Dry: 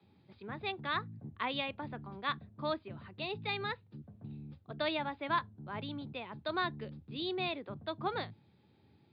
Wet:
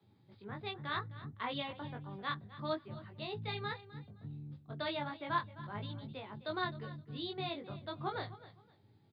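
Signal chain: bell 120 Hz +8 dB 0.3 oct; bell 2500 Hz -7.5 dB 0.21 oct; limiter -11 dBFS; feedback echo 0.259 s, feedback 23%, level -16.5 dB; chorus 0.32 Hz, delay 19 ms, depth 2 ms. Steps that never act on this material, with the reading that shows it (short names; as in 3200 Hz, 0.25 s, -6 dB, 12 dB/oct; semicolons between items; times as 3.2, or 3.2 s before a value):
limiter -11 dBFS: input peak -18.5 dBFS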